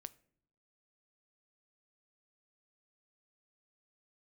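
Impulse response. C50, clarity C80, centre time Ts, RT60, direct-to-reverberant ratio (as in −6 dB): 21.5 dB, 25.0 dB, 2 ms, non-exponential decay, 15.0 dB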